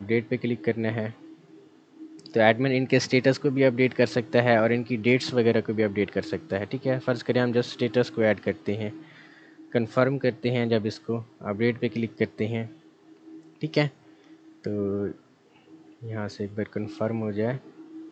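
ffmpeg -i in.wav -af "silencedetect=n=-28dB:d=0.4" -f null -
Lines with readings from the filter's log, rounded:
silence_start: 1.09
silence_end: 2.26 | silence_duration: 1.17
silence_start: 8.89
silence_end: 9.75 | silence_duration: 0.86
silence_start: 12.63
silence_end: 13.63 | silence_duration: 1.00
silence_start: 13.88
silence_end: 14.64 | silence_duration: 0.77
silence_start: 15.11
silence_end: 16.10 | silence_duration: 0.99
silence_start: 17.56
silence_end: 18.11 | silence_duration: 0.55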